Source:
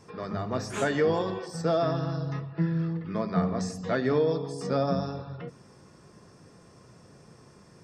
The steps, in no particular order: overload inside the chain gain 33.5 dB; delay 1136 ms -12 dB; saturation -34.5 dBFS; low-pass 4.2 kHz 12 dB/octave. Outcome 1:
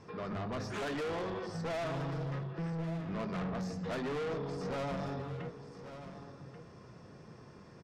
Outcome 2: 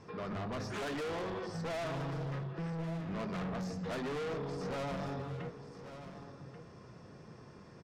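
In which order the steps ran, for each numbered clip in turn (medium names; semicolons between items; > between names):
low-pass > saturation > overload inside the chain > delay; low-pass > overload inside the chain > saturation > delay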